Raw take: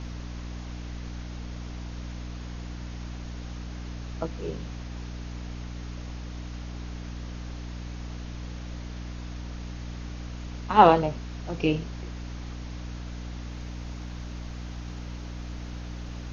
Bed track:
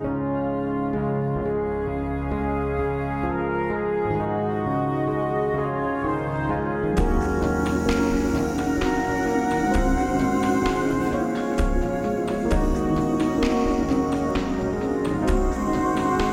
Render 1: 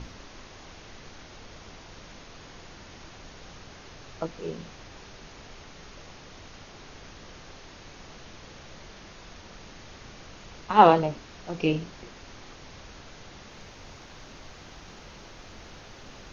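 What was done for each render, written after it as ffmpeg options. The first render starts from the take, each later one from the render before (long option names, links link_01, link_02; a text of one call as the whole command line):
ffmpeg -i in.wav -af "bandreject=frequency=60:width_type=h:width=6,bandreject=frequency=120:width_type=h:width=6,bandreject=frequency=180:width_type=h:width=6,bandreject=frequency=240:width_type=h:width=6,bandreject=frequency=300:width_type=h:width=6" out.wav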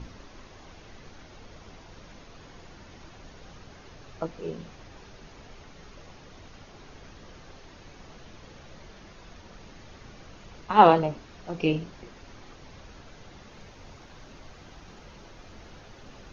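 ffmpeg -i in.wav -af "afftdn=noise_reduction=6:noise_floor=-48" out.wav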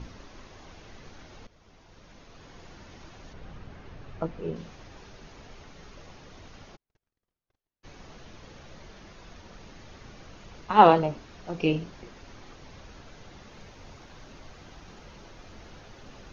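ffmpeg -i in.wav -filter_complex "[0:a]asettb=1/sr,asplit=3[link_01][link_02][link_03];[link_01]atrim=end=3.334[link_04];[link_02]atrim=start=3.33:end=4.56,asetpts=PTS-STARTPTS,afade=type=in:duration=0.004:curve=qsin,afade=type=out:start_time=1.226:duration=0.004:curve=qsin,bass=frequency=250:gain=5,treble=frequency=4000:gain=-11[link_05];[link_03]atrim=start=4.556[link_06];[link_04][link_05]acrossfade=duration=0.004:curve1=hsin:curve2=qsin[link_07];[link_07][link_06]acrossfade=duration=0.004:curve1=qsin:curve2=hsin,asplit=3[link_08][link_09][link_10];[link_08]afade=type=out:start_time=6.75:duration=0.02[link_11];[link_09]agate=range=-47dB:threshold=-42dB:ratio=16:release=100:detection=peak,afade=type=in:start_time=6.75:duration=0.02,afade=type=out:start_time=7.83:duration=0.02[link_12];[link_10]afade=type=in:start_time=7.83:duration=0.02[link_13];[link_11][link_12][link_13]amix=inputs=3:normalize=0,asplit=2[link_14][link_15];[link_14]atrim=end=1.47,asetpts=PTS-STARTPTS,afade=type=out:start_time=1.466:duration=0.004:curve=hsin:silence=0.188365[link_16];[link_15]atrim=start=1.47,asetpts=PTS-STARTPTS,afade=type=in:duration=1.22:silence=0.188365[link_17];[link_16][link_17]concat=n=2:v=0:a=1" out.wav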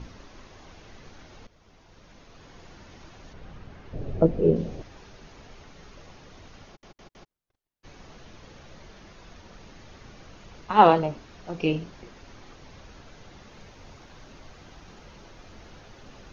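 ffmpeg -i in.wav -filter_complex "[0:a]asettb=1/sr,asplit=3[link_01][link_02][link_03];[link_01]atrim=end=3.934[link_04];[link_02]atrim=start=3.93:end=4.82,asetpts=PTS-STARTPTS,afade=type=in:duration=0.004:curve=qsin,afade=type=out:start_time=0.886:duration=0.004:curve=qsin,lowshelf=frequency=750:width_type=q:width=1.5:gain=11.5[link_05];[link_03]atrim=start=4.816[link_06];[link_04][link_05]acrossfade=duration=0.004:curve1=hsin:curve2=qsin[link_07];[link_07][link_06]acrossfade=duration=0.004:curve1=qsin:curve2=hsin,asplit=5[link_08][link_09][link_10][link_11][link_12];[link_08]atrim=end=6.832[link_13];[link_09]atrim=start=6.668:end=6.832[link_14];[link_10]atrim=start=6.668:end=6.832[link_15];[link_11]atrim=start=6.668:end=6.832[link_16];[link_12]atrim=start=7.308[link_17];[link_13][link_14]acrossfade=duration=0.004:curve1=hsin:curve2=hsin[link_18];[link_18][link_15]acrossfade=duration=0.004:curve1=hsin:curve2=hsin[link_19];[link_19][link_16]acrossfade=duration=0.004:curve1=hsin:curve2=hsin[link_20];[link_20][link_17]acrossfade=duration=0.004:curve1=hsin:curve2=hsin" out.wav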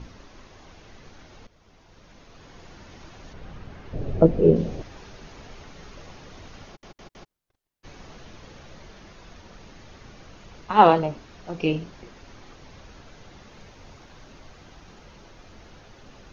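ffmpeg -i in.wav -af "dynaudnorm=framelen=340:gausssize=17:maxgain=6.5dB" out.wav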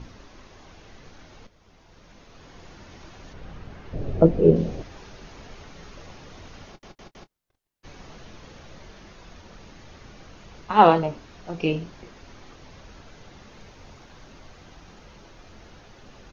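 ffmpeg -i in.wav -filter_complex "[0:a]asplit=2[link_01][link_02];[link_02]adelay=24,volume=-14dB[link_03];[link_01][link_03]amix=inputs=2:normalize=0" out.wav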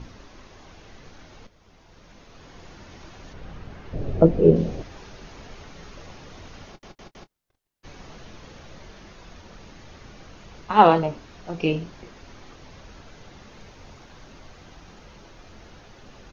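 ffmpeg -i in.wav -af "volume=1dB,alimiter=limit=-2dB:level=0:latency=1" out.wav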